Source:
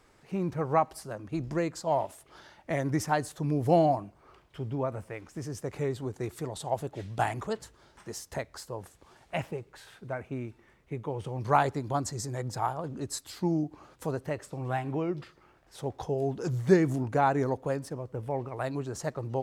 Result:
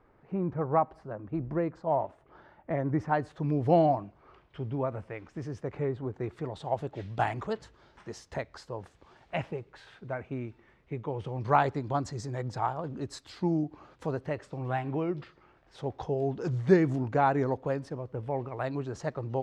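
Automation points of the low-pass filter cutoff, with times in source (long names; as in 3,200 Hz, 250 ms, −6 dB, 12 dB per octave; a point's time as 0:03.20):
0:02.94 1,400 Hz
0:03.50 3,400 Hz
0:05.48 3,400 Hz
0:05.93 1,700 Hz
0:06.92 4,100 Hz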